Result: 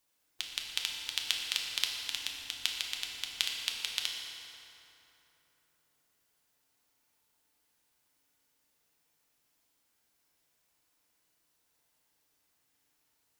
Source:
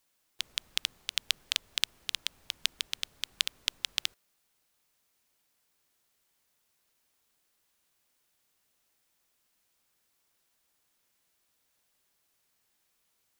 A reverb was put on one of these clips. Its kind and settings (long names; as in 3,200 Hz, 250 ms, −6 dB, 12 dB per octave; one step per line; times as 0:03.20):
feedback delay network reverb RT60 3.4 s, high-frequency decay 0.6×, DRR −1 dB
level −3.5 dB